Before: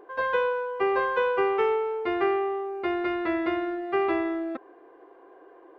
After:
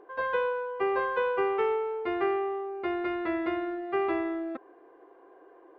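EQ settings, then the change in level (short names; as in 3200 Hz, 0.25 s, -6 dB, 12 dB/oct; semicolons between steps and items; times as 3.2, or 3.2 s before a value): LPF 4000 Hz 6 dB/oct; -3.0 dB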